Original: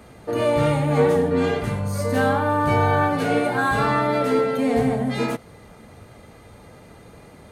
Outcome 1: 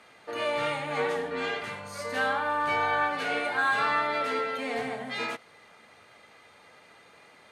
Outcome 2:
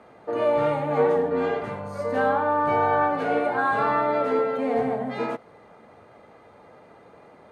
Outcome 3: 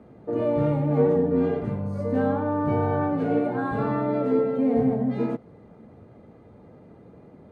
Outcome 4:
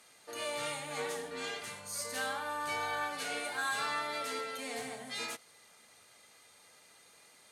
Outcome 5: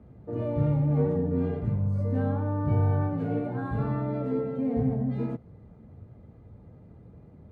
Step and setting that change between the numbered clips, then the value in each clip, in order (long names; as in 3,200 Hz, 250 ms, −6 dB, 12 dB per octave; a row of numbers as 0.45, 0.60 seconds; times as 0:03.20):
resonant band-pass, frequency: 2,500, 810, 260, 7,100, 100 Hertz